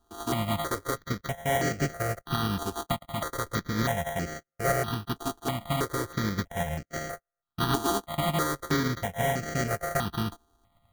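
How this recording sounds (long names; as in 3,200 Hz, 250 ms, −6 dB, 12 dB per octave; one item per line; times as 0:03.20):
a buzz of ramps at a fixed pitch in blocks of 64 samples
tremolo saw up 8.9 Hz, depth 35%
aliases and images of a low sample rate 2,600 Hz, jitter 0%
notches that jump at a steady rate 3.1 Hz 560–3,600 Hz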